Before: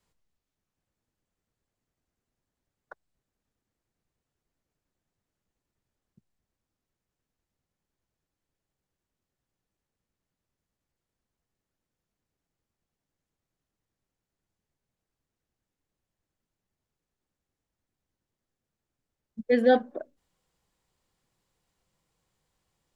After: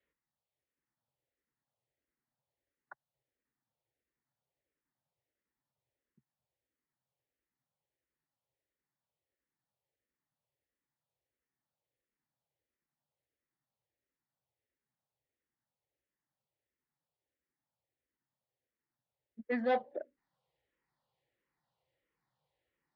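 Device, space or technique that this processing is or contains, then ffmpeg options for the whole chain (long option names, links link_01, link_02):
barber-pole phaser into a guitar amplifier: -filter_complex "[0:a]asplit=2[link_01][link_02];[link_02]afreqshift=-1.5[link_03];[link_01][link_03]amix=inputs=2:normalize=1,asoftclip=type=tanh:threshold=-22dB,highpass=76,equalizer=frequency=88:width_type=q:width=4:gain=-9,equalizer=frequency=130:width_type=q:width=4:gain=4,equalizer=frequency=190:width_type=q:width=4:gain=-6,equalizer=frequency=550:width_type=q:width=4:gain=6,equalizer=frequency=860:width_type=q:width=4:gain=5,equalizer=frequency=1900:width_type=q:width=4:gain=7,lowpass=frequency=4300:width=0.5412,lowpass=frequency=4300:width=1.3066,volume=-5.5dB"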